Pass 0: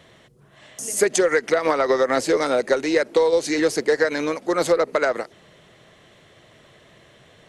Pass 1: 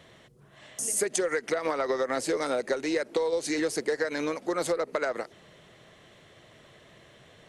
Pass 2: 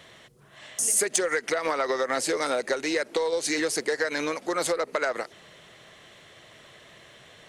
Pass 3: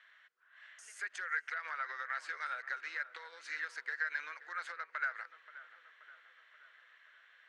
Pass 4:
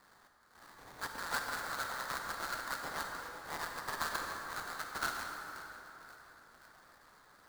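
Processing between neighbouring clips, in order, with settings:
dynamic EQ 9300 Hz, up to +6 dB, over -46 dBFS, Q 2; compressor 2.5:1, threshold -24 dBFS, peak gain reduction 8 dB; gain -3 dB
tilt shelf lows -4 dB, about 700 Hz; in parallel at -9 dB: soft clip -24 dBFS, distortion -13 dB
ladder band-pass 1700 Hz, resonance 65%; darkening echo 0.529 s, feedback 63%, low-pass 2100 Hz, level -15 dB; gain -2 dB
sample-rate reducer 2900 Hz, jitter 20%; reverb RT60 3.4 s, pre-delay 33 ms, DRR 2 dB; gain -1.5 dB

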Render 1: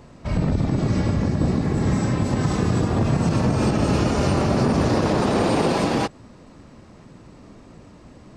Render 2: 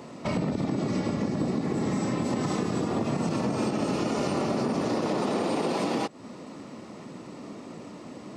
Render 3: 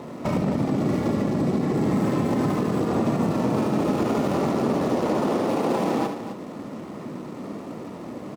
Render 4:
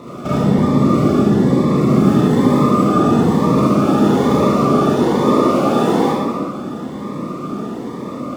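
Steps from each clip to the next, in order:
Chebyshev high-pass 230 Hz, order 2; notch 1600 Hz, Q 9.2; compressor 6:1, threshold -31 dBFS, peak gain reduction 13.5 dB; gain +6 dB
median filter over 15 samples; limiter -22 dBFS, peak gain reduction 5 dB; loudspeakers at several distances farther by 25 m -7 dB, 89 m -10 dB; gain +6 dB
small resonant body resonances 1200/3500 Hz, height 15 dB, ringing for 55 ms; reverb RT60 1.7 s, pre-delay 27 ms, DRR -7 dB; cascading phaser rising 1.1 Hz; gain +1.5 dB

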